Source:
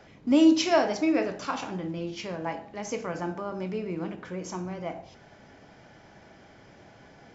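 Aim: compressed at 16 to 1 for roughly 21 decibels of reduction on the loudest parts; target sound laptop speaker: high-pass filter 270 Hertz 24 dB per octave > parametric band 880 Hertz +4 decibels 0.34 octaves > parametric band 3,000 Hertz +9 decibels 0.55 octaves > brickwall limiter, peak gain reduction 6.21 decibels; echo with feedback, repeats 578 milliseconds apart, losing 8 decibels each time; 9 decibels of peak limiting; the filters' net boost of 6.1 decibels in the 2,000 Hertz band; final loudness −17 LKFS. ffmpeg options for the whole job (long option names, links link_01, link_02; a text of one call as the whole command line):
ffmpeg -i in.wav -af "equalizer=frequency=2000:width_type=o:gain=4.5,acompressor=threshold=-36dB:ratio=16,alimiter=level_in=10dB:limit=-24dB:level=0:latency=1,volume=-10dB,highpass=frequency=270:width=0.5412,highpass=frequency=270:width=1.3066,equalizer=frequency=880:width_type=o:width=0.34:gain=4,equalizer=frequency=3000:width_type=o:width=0.55:gain=9,aecho=1:1:578|1156|1734|2312|2890:0.398|0.159|0.0637|0.0255|0.0102,volume=27.5dB,alimiter=limit=-7dB:level=0:latency=1" out.wav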